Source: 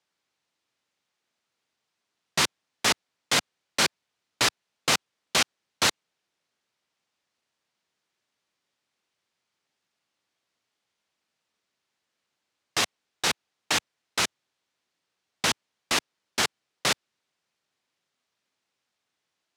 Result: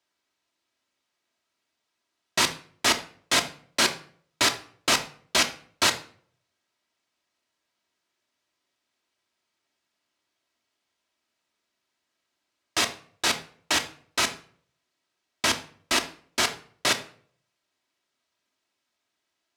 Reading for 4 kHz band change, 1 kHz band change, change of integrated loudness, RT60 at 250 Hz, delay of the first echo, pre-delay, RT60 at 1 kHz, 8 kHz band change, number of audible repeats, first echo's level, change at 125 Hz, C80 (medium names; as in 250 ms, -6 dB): +1.5 dB, +1.5 dB, +1.5 dB, 0.60 s, no echo, 3 ms, 0.45 s, +1.0 dB, no echo, no echo, -2.0 dB, 17.5 dB